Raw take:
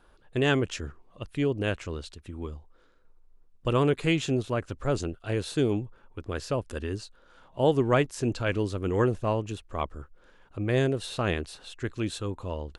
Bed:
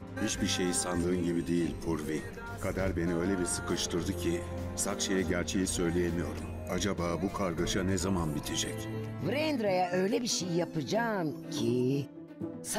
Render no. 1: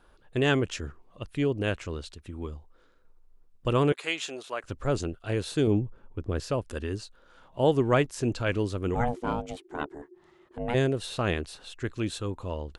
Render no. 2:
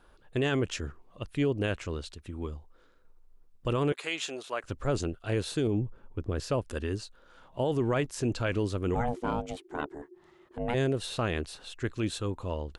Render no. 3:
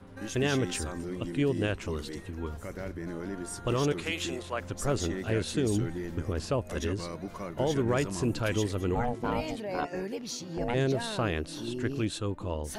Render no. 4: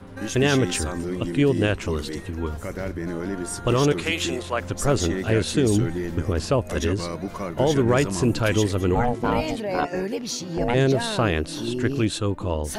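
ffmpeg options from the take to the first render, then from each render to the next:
-filter_complex "[0:a]asettb=1/sr,asplit=3[a][b][c];[a]atrim=end=3.924[d];[b]atrim=start=3.92:end=4.64,asetpts=PTS-STARTPTS,afade=t=in:d=0.004:c=qsin,afade=t=out:st=0.716:d=0.004:c=qsin,highpass=680[e];[c]atrim=start=4.636[f];[d][e]acrossfade=d=0.004:c1=hsin:c2=qsin[g];[g][f]acrossfade=d=0.004:c1=qsin:c2=hsin,asettb=1/sr,asplit=3[h][i][j];[h]atrim=end=5.674[k];[i]atrim=start=5.67:end=6.4,asetpts=PTS-STARTPTS,afade=t=in:d=0.004:c=qsin,afade=t=out:st=0.726:d=0.004:c=qsin,tiltshelf=f=650:g=5.5[l];[j]atrim=start=6.396[m];[k][l]acrossfade=d=0.004:c1=hsin:c2=qsin[n];[n][m]acrossfade=d=0.004:c1=qsin:c2=hsin,asplit=3[o][p][q];[o]afade=t=out:st=8.94:d=0.02[r];[p]aeval=exprs='val(0)*sin(2*PI*360*n/s)':c=same,afade=t=in:st=8.94:d=0.02,afade=t=out:st=10.73:d=0.02[s];[q]afade=t=in:st=10.73:d=0.02[t];[r][s][t]amix=inputs=3:normalize=0"
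-af "alimiter=limit=-19.5dB:level=0:latency=1:release=26"
-filter_complex "[1:a]volume=-6.5dB[a];[0:a][a]amix=inputs=2:normalize=0"
-af "volume=8dB"

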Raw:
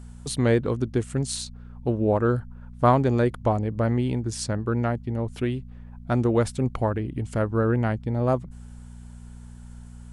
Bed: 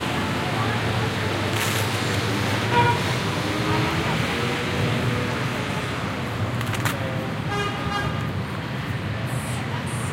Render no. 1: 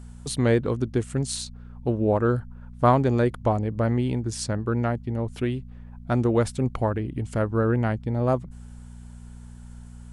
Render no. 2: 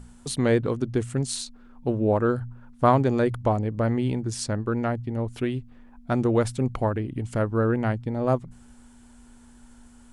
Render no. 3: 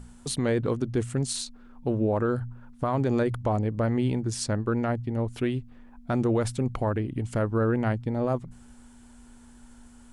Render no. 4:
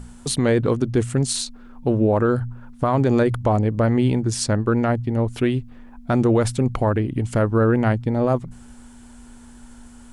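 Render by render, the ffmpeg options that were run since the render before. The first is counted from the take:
-af anull
-af "bandreject=f=60:t=h:w=4,bandreject=f=120:t=h:w=4,bandreject=f=180:t=h:w=4"
-af "alimiter=limit=-17dB:level=0:latency=1:release=19"
-af "volume=7dB"

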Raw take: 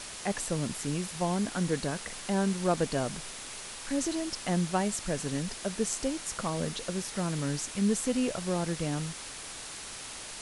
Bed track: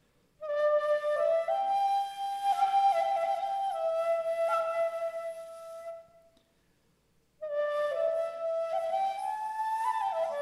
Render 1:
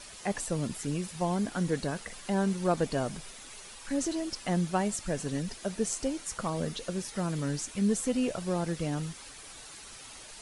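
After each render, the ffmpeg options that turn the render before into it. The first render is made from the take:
-af "afftdn=nr=9:nf=-43"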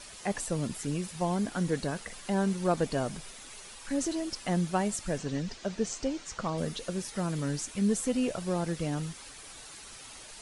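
-filter_complex "[0:a]asettb=1/sr,asplit=3[a][b][c];[a]atrim=end=5.184[d];[b]atrim=start=5.18:end=6.58,asetpts=PTS-STARTPTS,afade=t=in:d=0.004:c=qsin,afade=t=out:st=1.396:d=0.004:c=qsin,lowpass=f=6.8k:w=0.5412,lowpass=f=6.8k:w=1.3066[e];[c]atrim=start=6.576[f];[d][e]acrossfade=d=0.004:c1=hsin:c2=qsin[g];[g][f]acrossfade=d=0.004:c1=qsin:c2=hsin"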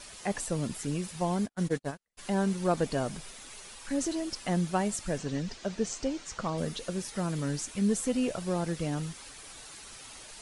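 -filter_complex "[0:a]asplit=3[a][b][c];[a]afade=t=out:st=1.31:d=0.02[d];[b]agate=range=-47dB:threshold=-32dB:ratio=16:release=100:detection=peak,afade=t=in:st=1.31:d=0.02,afade=t=out:st=2.17:d=0.02[e];[c]afade=t=in:st=2.17:d=0.02[f];[d][e][f]amix=inputs=3:normalize=0"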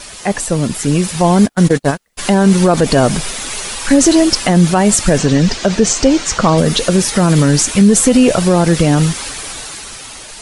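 -af "dynaudnorm=f=130:g=17:m=9dB,alimiter=level_in=15dB:limit=-1dB:release=50:level=0:latency=1"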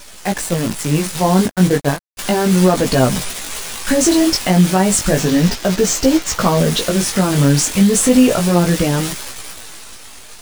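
-af "acrusher=bits=4:dc=4:mix=0:aa=0.000001,flanger=delay=15.5:depth=6.2:speed=0.33"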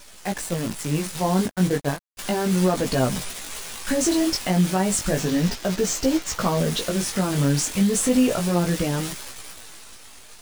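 -af "volume=-8dB"

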